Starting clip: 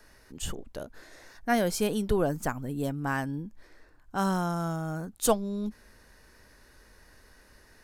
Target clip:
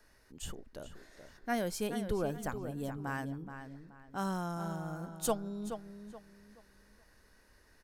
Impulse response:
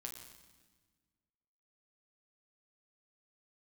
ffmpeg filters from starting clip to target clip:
-filter_complex "[0:a]asplit=2[a][b];[b]adelay=426,lowpass=f=3.8k:p=1,volume=-9dB,asplit=2[c][d];[d]adelay=426,lowpass=f=3.8k:p=1,volume=0.31,asplit=2[e][f];[f]adelay=426,lowpass=f=3.8k:p=1,volume=0.31,asplit=2[g][h];[h]adelay=426,lowpass=f=3.8k:p=1,volume=0.31[i];[a][c][e][g][i]amix=inputs=5:normalize=0,volume=-8dB"

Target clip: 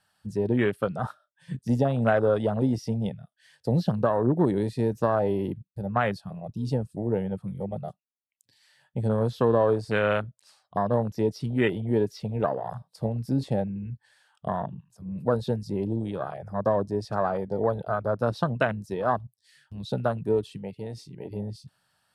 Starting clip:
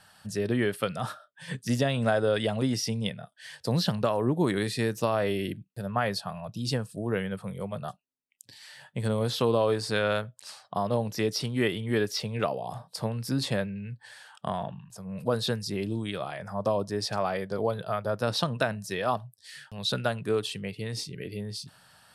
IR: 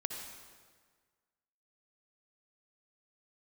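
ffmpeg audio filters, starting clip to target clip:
-filter_complex "[0:a]afwtdn=0.0316,asettb=1/sr,asplit=3[a][b][c];[a]atrim=end=20.574[d];[b]atrim=start=20.57:end=21.31,asetpts=PTS-STARTPTS,afade=t=in:d=0.004:c=qsin,afade=t=out:st=0.736:d=0.004:c=qsin,lowshelf=f=190:g=-8.5[e];[c]atrim=start=21.306[f];[d][e]acrossfade=d=0.004:c1=hsin:c2=qsin[g];[g][f]acrossfade=d=0.004:c1=qsin:c2=hsin,volume=3dB"

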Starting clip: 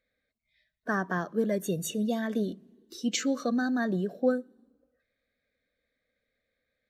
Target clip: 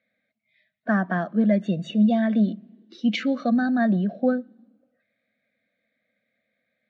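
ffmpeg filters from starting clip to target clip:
-af "highpass=f=110:w=0.5412,highpass=f=110:w=1.3066,equalizer=f=210:t=q:w=4:g=9,equalizer=f=420:t=q:w=4:g=-10,equalizer=f=670:t=q:w=4:g=8,equalizer=f=1k:t=q:w=4:g=-6,equalizer=f=2.2k:t=q:w=4:g=5,lowpass=f=3.8k:w=0.5412,lowpass=f=3.8k:w=1.3066,volume=3.5dB"

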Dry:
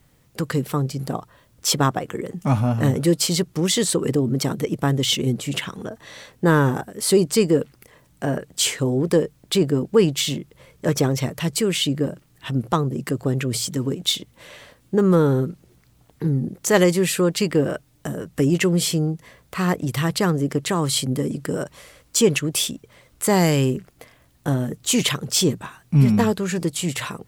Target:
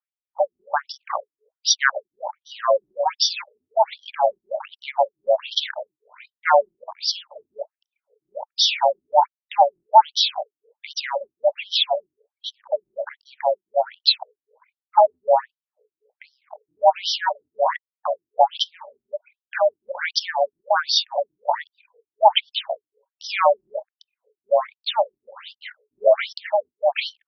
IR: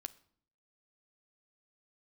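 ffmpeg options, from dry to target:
-filter_complex "[0:a]anlmdn=1,asplit=2[a][b];[b]acontrast=64,volume=2.5dB[c];[a][c]amix=inputs=2:normalize=0,afreqshift=430,afftfilt=real='re*between(b*sr/1024,230*pow(4300/230,0.5+0.5*sin(2*PI*1.3*pts/sr))/1.41,230*pow(4300/230,0.5+0.5*sin(2*PI*1.3*pts/sr))*1.41)':imag='im*between(b*sr/1024,230*pow(4300/230,0.5+0.5*sin(2*PI*1.3*pts/sr))/1.41,230*pow(4300/230,0.5+0.5*sin(2*PI*1.3*pts/sr))*1.41)':win_size=1024:overlap=0.75,volume=-5dB"

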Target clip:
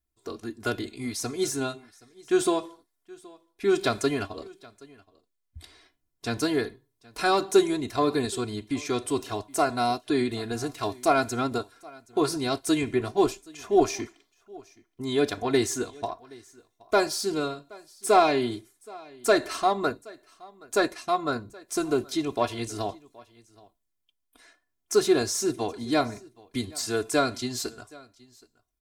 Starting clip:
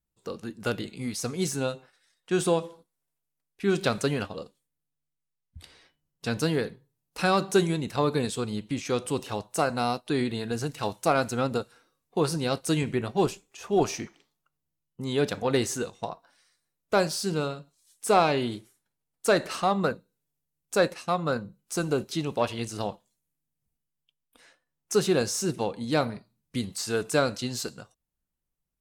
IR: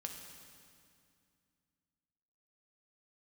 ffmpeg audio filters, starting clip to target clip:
-af "bandreject=f=2.8k:w=17,aecho=1:1:2.9:0.84,aecho=1:1:773:0.0668,volume=-1dB"

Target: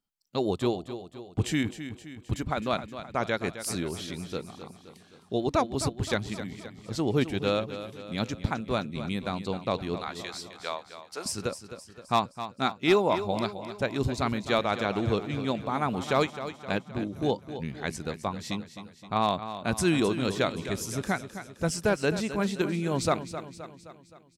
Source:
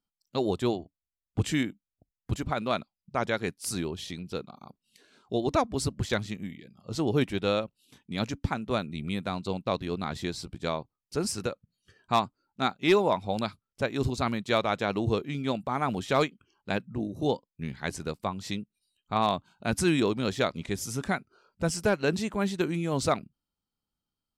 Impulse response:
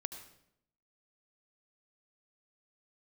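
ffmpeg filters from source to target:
-filter_complex "[0:a]asettb=1/sr,asplit=3[a][b][c];[a]atrim=end=9.984[d];[b]atrim=start=9.98:end=11.26,asetpts=PTS-STARTPTS,afade=t=in:d=0.004:c=qsin,afade=t=out:st=1.276:d=0.004:c=qsin,highpass=690[e];[c]atrim=start=11.256[f];[d][e]acrossfade=d=0.004:c1=hsin:c2=qsin[g];[g][f]acrossfade=d=0.004:c1=qsin:c2=hsin,aecho=1:1:261|522|783|1044|1305|1566:0.266|0.141|0.0747|0.0396|0.021|0.0111"

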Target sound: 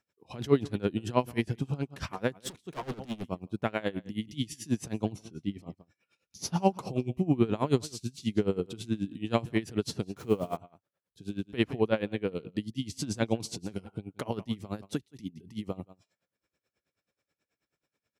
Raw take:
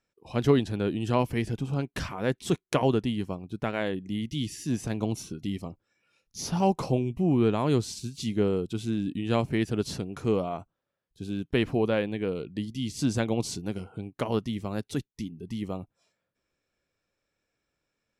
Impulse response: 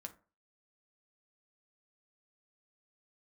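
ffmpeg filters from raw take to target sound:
-filter_complex "[0:a]asettb=1/sr,asplit=3[a][b][c];[a]atrim=end=5.124[d];[b]atrim=start=5.12:end=5.67,asetpts=PTS-STARTPTS,afade=t=in:d=0.004:c=qsin,afade=t=out:st=0.546:d=0.004:c=qsin,lowpass=f=2.6k:p=1[e];[c]atrim=start=5.666[f];[d][e]acrossfade=d=0.004:c1=hsin:c2=qsin[g];[g][f]acrossfade=d=0.004:c1=qsin:c2=hsin,aecho=1:1:169:0.119,asettb=1/sr,asplit=3[h][i][j];[h]atrim=end=10.164[k];[i]atrim=start=10.16:end=10.57,asetpts=PTS-STARTPTS,afade=t=in:d=0.004:c=qsin,afade=t=out:st=0.406:d=0.004:c=qsin,acrusher=bits=9:dc=4:mix=0:aa=0.000001[l];[j]atrim=start=10.566[m];[k][l]acrossfade=d=0.004:c1=hsin:c2=qsin[n];[n][m]acrossfade=d=0.004:c1=qsin:c2=hsin,highpass=70,asettb=1/sr,asplit=3[o][p][q];[o]atrim=end=2.354[r];[p]atrim=start=2.35:end=3.24,asetpts=PTS-STARTPTS,afade=t=in:d=0.004:c=qsin,afade=t=out:st=0.886:d=0.004:c=qsin,asoftclip=type=hard:threshold=-32dB[s];[q]atrim=start=3.236[t];[r][s]acrossfade=d=0.004:c1=hsin:c2=qsin[u];[u][t]acrossfade=d=0.004:c1=qsin:c2=hsin,aeval=exprs='val(0)*pow(10,-21*(0.5-0.5*cos(2*PI*9.3*n/s))/20)':c=same,volume=2.5dB"

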